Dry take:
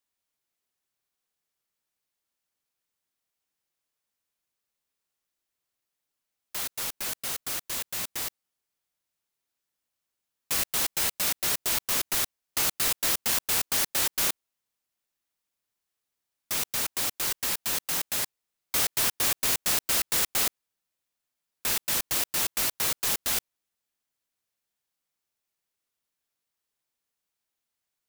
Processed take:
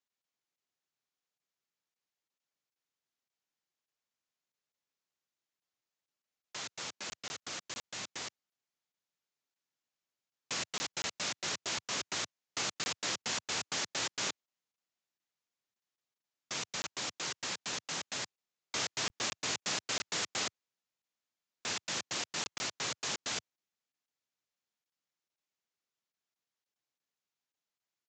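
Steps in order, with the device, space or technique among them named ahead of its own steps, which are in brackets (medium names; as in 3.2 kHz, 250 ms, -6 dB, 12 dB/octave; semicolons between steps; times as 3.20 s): call with lost packets (high-pass 100 Hz 24 dB/octave; resampled via 16 kHz; lost packets of 20 ms random); trim -5 dB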